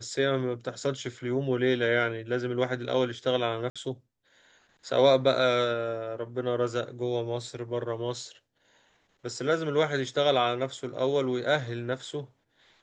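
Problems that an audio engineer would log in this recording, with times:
3.7–3.76 gap 56 ms

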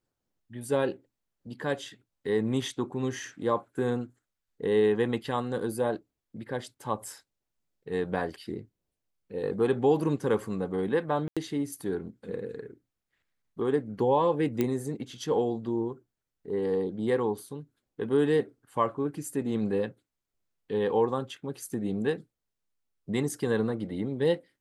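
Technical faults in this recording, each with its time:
11.28–11.37 gap 86 ms
14.61 pop -14 dBFS

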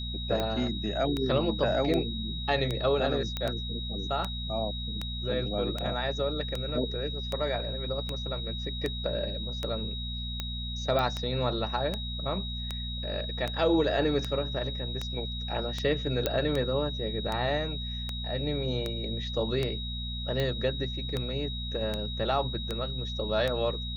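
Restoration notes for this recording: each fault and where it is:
hum 60 Hz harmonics 4 -36 dBFS
tick 78 rpm -17 dBFS
tone 3800 Hz -37 dBFS
3.37 pop -17 dBFS
10.99 pop -17 dBFS
16.26 pop -12 dBFS

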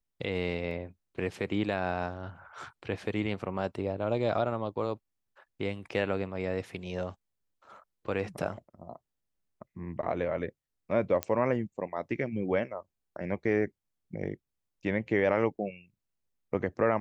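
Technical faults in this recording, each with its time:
0.71 gap 3.4 ms
11.23 pop -15 dBFS

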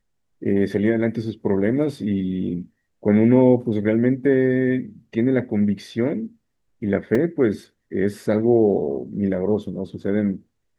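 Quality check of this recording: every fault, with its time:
7.15 gap 2.9 ms

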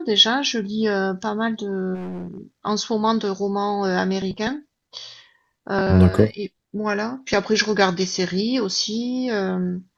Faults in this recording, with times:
1.94–2.41 clipped -28 dBFS

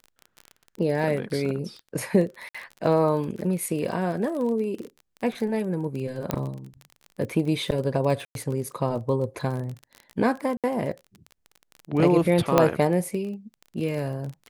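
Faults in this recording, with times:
crackle 26/s -31 dBFS
2.49–2.54 gap 55 ms
6.31 pop -10 dBFS
8.25–8.35 gap 0.102 s
10.57–10.64 gap 67 ms
12.58 pop -4 dBFS

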